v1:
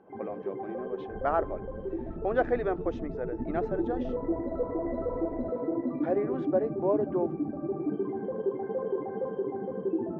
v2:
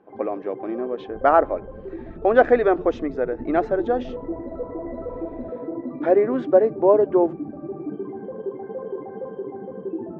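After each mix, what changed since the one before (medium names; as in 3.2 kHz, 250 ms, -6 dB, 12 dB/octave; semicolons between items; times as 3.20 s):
speech +11.5 dB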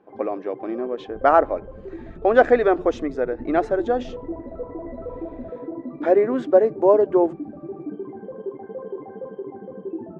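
speech: remove distance through air 140 m; first sound: send -9.0 dB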